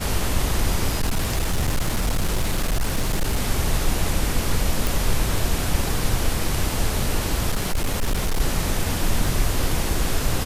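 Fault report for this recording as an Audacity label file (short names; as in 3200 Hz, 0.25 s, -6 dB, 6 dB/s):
0.930000	3.400000	clipped -17 dBFS
4.870000	4.870000	pop
7.500000	8.410000	clipped -17.5 dBFS
9.260000	9.260000	gap 2.2 ms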